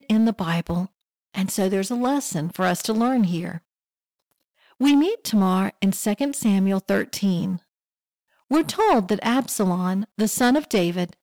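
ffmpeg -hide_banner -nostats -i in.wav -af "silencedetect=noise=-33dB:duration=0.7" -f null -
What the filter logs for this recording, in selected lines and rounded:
silence_start: 3.58
silence_end: 4.80 | silence_duration: 1.23
silence_start: 7.57
silence_end: 8.51 | silence_duration: 0.94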